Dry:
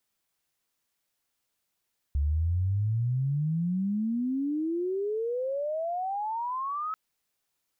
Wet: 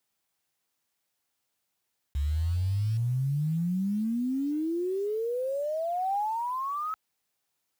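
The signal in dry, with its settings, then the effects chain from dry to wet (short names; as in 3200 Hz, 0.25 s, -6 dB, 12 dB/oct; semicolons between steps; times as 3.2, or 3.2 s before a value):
chirp logarithmic 69 Hz -> 1300 Hz -23 dBFS -> -29.5 dBFS 4.79 s
block floating point 5-bit; HPF 60 Hz; bell 800 Hz +3.5 dB 0.26 oct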